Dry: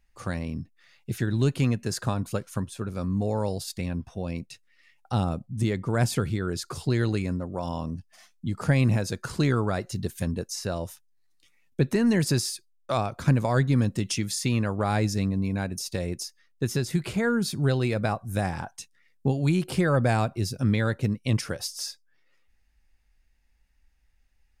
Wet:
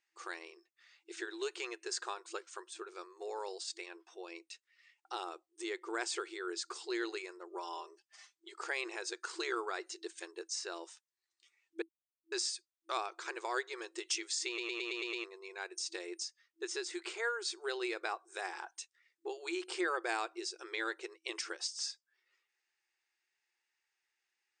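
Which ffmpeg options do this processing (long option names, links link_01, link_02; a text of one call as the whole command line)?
ffmpeg -i in.wav -filter_complex "[0:a]asettb=1/sr,asplit=3[link_01][link_02][link_03];[link_01]atrim=end=7.514[link_04];[link_02]atrim=start=7.51:end=8.54,asetpts=PTS-STARTPTS,afade=type=in:duration=0.004:curve=qsin,afade=type=out:start_time=1.026:duration=0.004:curve=qsin,aecho=1:1:5:0.66,atrim=end_sample=45423[link_05];[link_03]atrim=start=8.536[link_06];[link_04][link_05]acrossfade=duration=0.004:curve1=hsin:curve2=qsin[link_07];[link_07][link_06]acrossfade=duration=0.004:curve1=qsin:curve2=hsin,asplit=10[link_08][link_09][link_10][link_11][link_12][link_13][link_14][link_15][link_16][link_17];[link_08]atrim=end=11.82,asetpts=PTS-STARTPTS,afade=type=out:start_time=11.816:duration=0.004:curve=hsin[link_18];[link_09]atrim=start=11.82:end=12.32,asetpts=PTS-STARTPTS,volume=0[link_19];[link_10]atrim=start=12.32:end=14.582,asetpts=PTS-STARTPTS,afade=type=in:duration=0.004:curve=hsin[link_20];[link_11]atrim=start=14.468:end=14.582[link_21];[link_12]atrim=start=14.468:end=14.582[link_22];[link_13]atrim=start=14.468:end=14.582[link_23];[link_14]atrim=start=14.468:end=14.582[link_24];[link_15]atrim=start=14.468:end=14.582[link_25];[link_16]atrim=start=14.468:end=14.582[link_26];[link_17]atrim=start=15.238[link_27];[link_18][link_19][link_20]concat=n=3:v=0:a=1[link_28];[link_28][link_21]acrossfade=duration=0.004:curve1=hsin:curve2=hsin[link_29];[link_29][link_22]acrossfade=duration=0.004:curve1=hsin:curve2=hsin[link_30];[link_30][link_23]acrossfade=duration=0.004:curve1=hsin:curve2=hsin[link_31];[link_31][link_24]acrossfade=duration=0.004:curve1=hsin:curve2=hsin[link_32];[link_32][link_25]acrossfade=duration=0.004:curve1=hsin:curve2=hsin[link_33];[link_33][link_26]acrossfade=duration=0.004:curve1=hsin:curve2=hsin[link_34];[link_34][link_27]acrossfade=duration=0.004:curve1=hsin:curve2=hsin,afftfilt=real='re*between(b*sr/4096,330,8900)':imag='im*between(b*sr/4096,330,8900)':win_size=4096:overlap=0.75,equalizer=frequency=580:width=2.2:gain=-14,volume=-4.5dB" out.wav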